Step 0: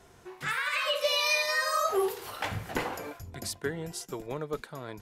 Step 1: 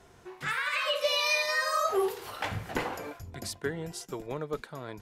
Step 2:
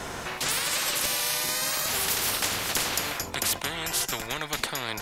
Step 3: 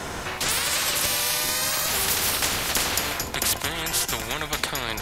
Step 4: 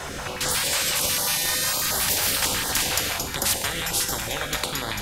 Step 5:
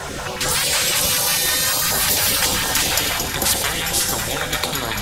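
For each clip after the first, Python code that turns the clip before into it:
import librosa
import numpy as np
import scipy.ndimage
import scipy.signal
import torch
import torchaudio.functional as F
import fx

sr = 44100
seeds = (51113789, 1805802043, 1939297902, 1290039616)

y1 = fx.high_shelf(x, sr, hz=8000.0, db=-5.0)
y2 = fx.spectral_comp(y1, sr, ratio=10.0)
y2 = y2 * librosa.db_to_amplitude(6.0)
y3 = fx.octave_divider(y2, sr, octaves=2, level_db=-2.0)
y3 = fx.echo_feedback(y3, sr, ms=147, feedback_pct=60, wet_db=-15.5)
y3 = y3 * librosa.db_to_amplitude(3.0)
y4 = fx.rev_fdn(y3, sr, rt60_s=2.3, lf_ratio=0.9, hf_ratio=0.7, size_ms=11.0, drr_db=3.5)
y4 = fx.filter_held_notch(y4, sr, hz=11.0, low_hz=240.0, high_hz=2500.0)
y5 = fx.spec_quant(y4, sr, step_db=15)
y5 = fx.echo_split(y5, sr, split_hz=2200.0, low_ms=551, high_ms=98, feedback_pct=52, wet_db=-9.0)
y5 = y5 * librosa.db_to_amplitude(5.0)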